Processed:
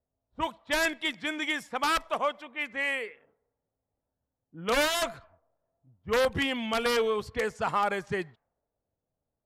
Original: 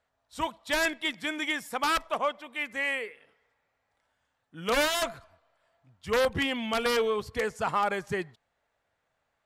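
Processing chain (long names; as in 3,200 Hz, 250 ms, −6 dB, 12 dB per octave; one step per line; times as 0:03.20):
low-pass that shuts in the quiet parts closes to 380 Hz, open at −27.5 dBFS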